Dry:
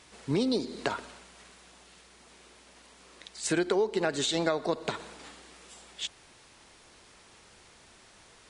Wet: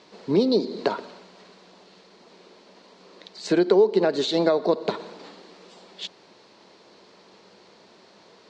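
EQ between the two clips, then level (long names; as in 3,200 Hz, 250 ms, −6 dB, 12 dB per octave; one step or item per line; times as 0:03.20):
loudspeaker in its box 140–6,000 Hz, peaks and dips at 190 Hz +10 dB, 620 Hz +3 dB, 980 Hz +5 dB, 4,300 Hz +8 dB
parametric band 420 Hz +11 dB 1.4 octaves
−1.5 dB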